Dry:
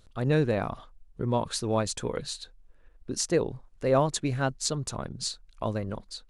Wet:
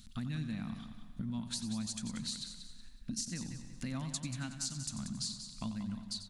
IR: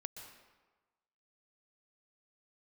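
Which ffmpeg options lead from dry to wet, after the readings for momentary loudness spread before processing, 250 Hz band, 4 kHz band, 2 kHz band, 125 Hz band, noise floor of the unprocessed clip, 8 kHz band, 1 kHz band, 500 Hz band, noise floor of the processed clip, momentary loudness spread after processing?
12 LU, −7.0 dB, −5.5 dB, −12.5 dB, −10.0 dB, −58 dBFS, −6.0 dB, −20.0 dB, −30.5 dB, −52 dBFS, 7 LU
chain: -filter_complex "[0:a]firequalizer=gain_entry='entry(130,0);entry(220,12);entry(410,-27);entry(720,-11);entry(1900,1);entry(4300,7)':delay=0.05:min_phase=1,acompressor=threshold=-39dB:ratio=6,aecho=1:1:185|370|555:0.335|0.104|0.0322,asplit=2[link_01][link_02];[1:a]atrim=start_sample=2205,asetrate=30429,aresample=44100,adelay=91[link_03];[link_02][link_03]afir=irnorm=-1:irlink=0,volume=-9dB[link_04];[link_01][link_04]amix=inputs=2:normalize=0,volume=1dB"

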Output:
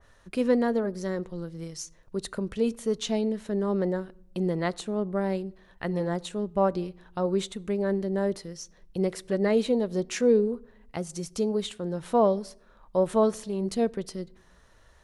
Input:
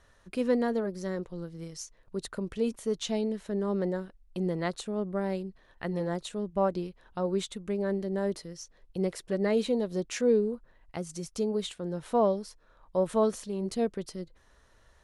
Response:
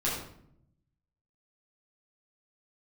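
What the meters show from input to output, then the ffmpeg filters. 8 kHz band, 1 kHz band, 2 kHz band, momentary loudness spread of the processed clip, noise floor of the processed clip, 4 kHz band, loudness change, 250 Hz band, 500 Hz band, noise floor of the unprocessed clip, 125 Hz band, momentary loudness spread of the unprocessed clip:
+2.5 dB, +3.5 dB, +3.0 dB, 14 LU, −58 dBFS, +2.0 dB, +3.0 dB, +3.0 dB, +3.0 dB, −62 dBFS, +3.0 dB, 14 LU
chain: -filter_complex "[0:a]asplit=2[link_01][link_02];[1:a]atrim=start_sample=2205[link_03];[link_02][link_03]afir=irnorm=-1:irlink=0,volume=-30dB[link_04];[link_01][link_04]amix=inputs=2:normalize=0,adynamicequalizer=threshold=0.00631:dfrequency=2400:dqfactor=0.7:tfrequency=2400:tqfactor=0.7:attack=5:release=100:ratio=0.375:range=2:mode=cutabove:tftype=highshelf,volume=3dB"

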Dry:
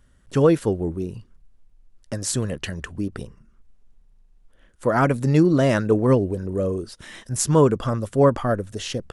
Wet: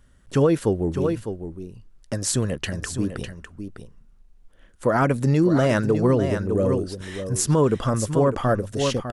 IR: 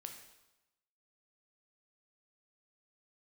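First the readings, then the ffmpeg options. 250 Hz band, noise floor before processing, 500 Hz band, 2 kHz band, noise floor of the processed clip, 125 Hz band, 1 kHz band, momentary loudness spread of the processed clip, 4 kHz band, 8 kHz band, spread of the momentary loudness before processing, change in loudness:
−0.5 dB, −57 dBFS, −1.0 dB, +0.5 dB, −54 dBFS, 0.0 dB, −0.5 dB, 16 LU, +1.0 dB, +1.0 dB, 14 LU, −1.0 dB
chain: -af "aecho=1:1:603:0.335,alimiter=limit=-11.5dB:level=0:latency=1:release=123,volume=1.5dB"

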